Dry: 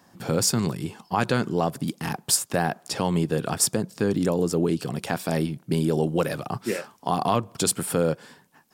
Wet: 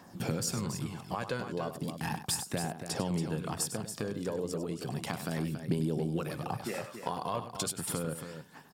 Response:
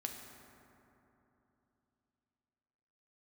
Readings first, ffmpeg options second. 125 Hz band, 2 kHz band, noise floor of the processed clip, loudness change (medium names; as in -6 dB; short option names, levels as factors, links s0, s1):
-8.0 dB, -9.0 dB, -52 dBFS, -9.5 dB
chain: -filter_complex "[0:a]acompressor=threshold=0.0224:ratio=5,aphaser=in_gain=1:out_gain=1:delay=2.1:decay=0.4:speed=0.35:type=triangular,asplit=2[s0][s1];[s1]aecho=0:1:99.13|279.9:0.282|0.355[s2];[s0][s2]amix=inputs=2:normalize=0"